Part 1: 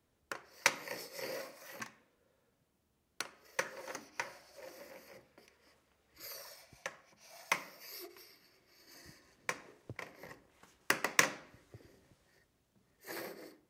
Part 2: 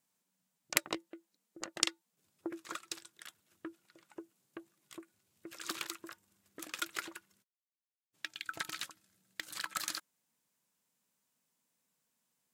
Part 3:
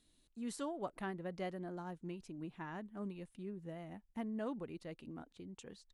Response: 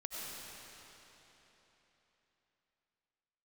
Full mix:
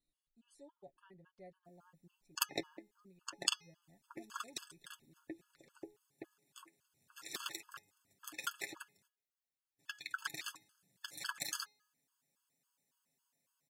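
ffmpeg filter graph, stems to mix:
-filter_complex "[1:a]bandreject=f=418.3:t=h:w=4,bandreject=f=836.6:t=h:w=4,bandreject=f=1254.9:t=h:w=4,bandreject=f=1673.2:t=h:w=4,bandreject=f=2091.5:t=h:w=4,bandreject=f=2509.8:t=h:w=4,bandreject=f=2928.1:t=h:w=4,bandreject=f=3346.4:t=h:w=4,bandreject=f=3764.7:t=h:w=4,bandreject=f=4183:t=h:w=4,bandreject=f=4601.3:t=h:w=4,bandreject=f=5019.6:t=h:w=4,bandreject=f=5437.9:t=h:w=4,bandreject=f=5856.2:t=h:w=4,bandreject=f=6274.5:t=h:w=4,adelay=1650,volume=0.944[s0];[2:a]aecho=1:1:5.6:0.47,volume=0.133[s1];[s0][s1]amix=inputs=2:normalize=0,aecho=1:1:7.3:0.53,afftfilt=real='re*gt(sin(2*PI*3.6*pts/sr)*(1-2*mod(floor(b*sr/1024/870),2)),0)':imag='im*gt(sin(2*PI*3.6*pts/sr)*(1-2*mod(floor(b*sr/1024/870),2)),0)':win_size=1024:overlap=0.75"

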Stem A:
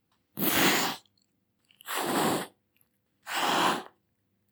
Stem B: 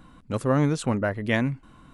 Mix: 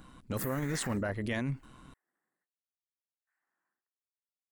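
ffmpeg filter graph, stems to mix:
-filter_complex "[0:a]firequalizer=gain_entry='entry(930,0);entry(1800,14);entry(3100,-18);entry(6900,-3)':delay=0.05:min_phase=1,acompressor=threshold=0.0316:ratio=6,volume=0.376[s0];[1:a]tremolo=f=130:d=0.462,volume=0.841,asplit=2[s1][s2];[s2]apad=whole_len=203453[s3];[s0][s3]sidechaingate=range=0.00447:threshold=0.00631:ratio=16:detection=peak[s4];[s4][s1]amix=inputs=2:normalize=0,highshelf=f=4000:g=7,alimiter=level_in=1.06:limit=0.0631:level=0:latency=1:release=13,volume=0.944"

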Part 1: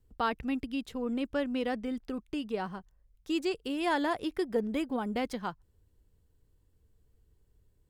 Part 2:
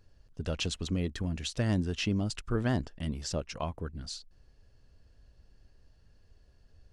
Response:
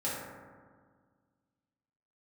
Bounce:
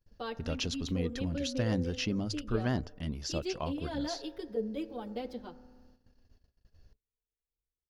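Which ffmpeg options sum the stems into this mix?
-filter_complex "[0:a]equalizer=f=125:t=o:w=1:g=-6,equalizer=f=500:t=o:w=1:g=5,equalizer=f=1000:t=o:w=1:g=-7,equalizer=f=2000:t=o:w=1:g=-6,equalizer=f=4000:t=o:w=1:g=7,equalizer=f=8000:t=o:w=1:g=-11,acrossover=split=490[s0][s1];[s0]aeval=exprs='val(0)*(1-0.5/2+0.5/2*cos(2*PI*1.3*n/s))':c=same[s2];[s1]aeval=exprs='val(0)*(1-0.5/2-0.5/2*cos(2*PI*1.3*n/s))':c=same[s3];[s2][s3]amix=inputs=2:normalize=0,asplit=2[s4][s5];[s5]adelay=6.6,afreqshift=0.42[s6];[s4][s6]amix=inputs=2:normalize=1,volume=0.75,asplit=2[s7][s8];[s8]volume=0.126[s9];[1:a]bandreject=f=50:t=h:w=6,bandreject=f=100:t=h:w=6,aexciter=amount=1.1:drive=2:freq=4700,volume=0.794[s10];[2:a]atrim=start_sample=2205[s11];[s9][s11]afir=irnorm=-1:irlink=0[s12];[s7][s10][s12]amix=inputs=3:normalize=0,agate=range=0.0794:threshold=0.00112:ratio=16:detection=peak"

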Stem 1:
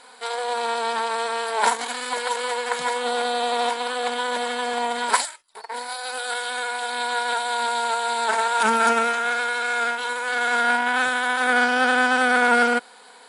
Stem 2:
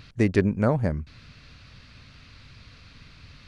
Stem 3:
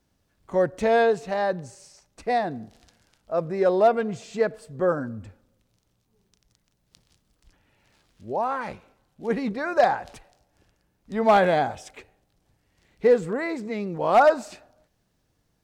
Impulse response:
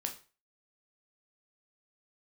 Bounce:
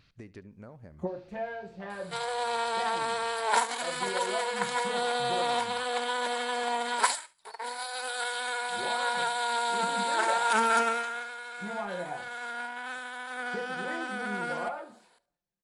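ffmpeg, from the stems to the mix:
-filter_complex "[0:a]adelay=1900,volume=0.562,afade=t=out:st=10.71:d=0.58:silence=0.266073,asplit=2[s0][s1];[s1]volume=0.106[s2];[1:a]acompressor=threshold=0.0447:ratio=12,volume=0.2,asplit=3[s3][s4][s5];[s4]volume=0.1[s6];[2:a]afwtdn=0.0251,aecho=1:1:5.7:0.89,acompressor=threshold=0.0282:ratio=3,adelay=500,volume=0.708,asplit=2[s7][s8];[s8]volume=0.631[s9];[s5]apad=whole_len=711926[s10];[s7][s10]sidechaingate=range=0.0224:threshold=0.00224:ratio=16:detection=peak[s11];[3:a]atrim=start_sample=2205[s12];[s9][s12]afir=irnorm=-1:irlink=0[s13];[s2][s6]amix=inputs=2:normalize=0,aecho=0:1:72|144|216:1|0.19|0.0361[s14];[s0][s3][s11][s13][s14]amix=inputs=5:normalize=0,lowshelf=f=250:g=-4"

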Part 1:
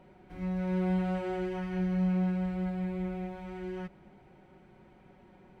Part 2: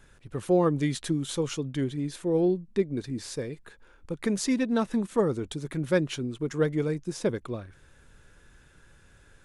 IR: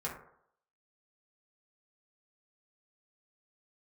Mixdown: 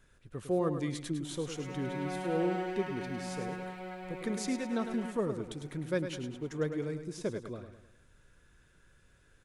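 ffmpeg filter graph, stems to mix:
-filter_complex "[0:a]highpass=520,adelay=1250,volume=1.19,asplit=2[s0][s1];[s1]volume=0.316[s2];[1:a]volume=0.398,asplit=2[s3][s4];[s4]volume=0.355[s5];[s2][s5]amix=inputs=2:normalize=0,aecho=0:1:104|208|312|416|520|624:1|0.43|0.185|0.0795|0.0342|0.0147[s6];[s0][s3][s6]amix=inputs=3:normalize=0,bandreject=f=840:w=12"

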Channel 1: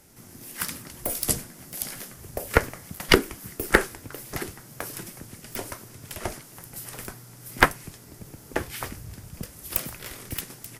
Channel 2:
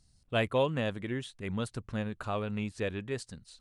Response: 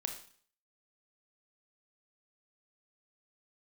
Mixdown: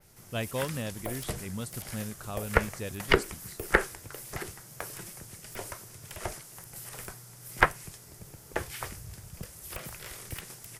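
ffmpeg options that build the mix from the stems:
-filter_complex "[0:a]acrossover=split=3000[s0][s1];[s1]acompressor=threshold=0.0126:ratio=4:attack=1:release=60[s2];[s0][s2]amix=inputs=2:normalize=0,equalizer=f=260:t=o:w=0.53:g=-10.5,volume=0.668[s3];[1:a]bass=f=250:g=5,treble=f=4000:g=6,volume=0.501[s4];[s3][s4]amix=inputs=2:normalize=0,adynamicequalizer=threshold=0.00178:dfrequency=8000:dqfactor=0.8:tfrequency=8000:tqfactor=0.8:attack=5:release=100:ratio=0.375:range=2.5:mode=boostabove:tftype=bell"

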